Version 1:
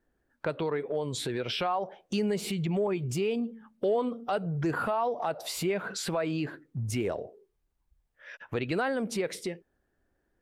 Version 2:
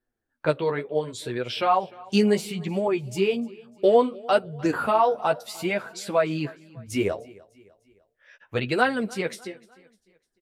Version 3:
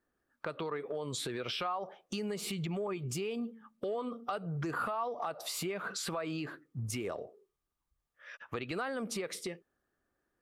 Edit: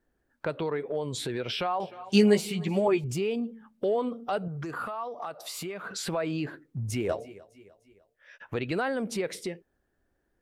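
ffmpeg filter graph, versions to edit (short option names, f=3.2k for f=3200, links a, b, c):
-filter_complex "[1:a]asplit=2[a][b];[0:a]asplit=4[c][d][e][f];[c]atrim=end=1.802[g];[a]atrim=start=1.798:end=3.042[h];[d]atrim=start=3.038:end=4.482[i];[2:a]atrim=start=4.478:end=5.912[j];[e]atrim=start=5.908:end=7.092[k];[b]atrim=start=7.088:end=8.402[l];[f]atrim=start=8.398[m];[g][h]acrossfade=d=0.004:c1=hsin:c2=hsin[n];[n][i]acrossfade=d=0.004:c1=hsin:c2=hsin[o];[o][j]acrossfade=d=0.004:c1=hsin:c2=hsin[p];[p][k]acrossfade=d=0.004:c1=hsin:c2=hsin[q];[q][l]acrossfade=d=0.004:c1=hsin:c2=hsin[r];[r][m]acrossfade=d=0.004:c1=hsin:c2=hsin"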